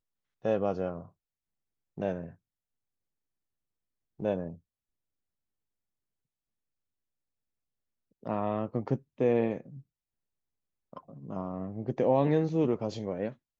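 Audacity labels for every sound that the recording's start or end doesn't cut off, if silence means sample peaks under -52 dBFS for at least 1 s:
4.200000	4.580000	sound
8.230000	9.810000	sound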